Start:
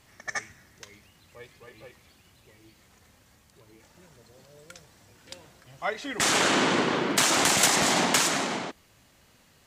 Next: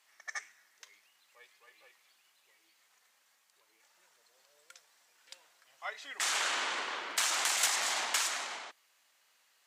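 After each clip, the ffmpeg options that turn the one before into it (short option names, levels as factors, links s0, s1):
-af "highpass=940,volume=0.422"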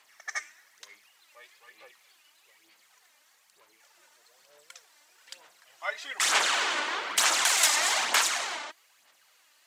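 -af "aphaser=in_gain=1:out_gain=1:delay=3.4:decay=0.5:speed=1.1:type=sinusoidal,volume=1.88"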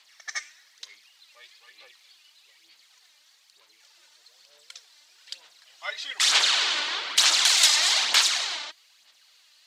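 -af "equalizer=f=4100:w=0.9:g=14.5,volume=0.596"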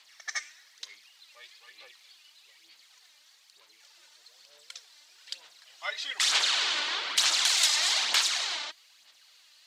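-af "acompressor=threshold=0.0316:ratio=1.5"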